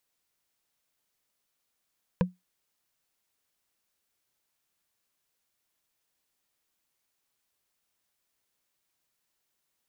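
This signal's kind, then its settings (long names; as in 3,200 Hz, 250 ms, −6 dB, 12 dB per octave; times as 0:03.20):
struck wood, lowest mode 181 Hz, decay 0.18 s, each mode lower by 3.5 dB, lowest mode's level −17 dB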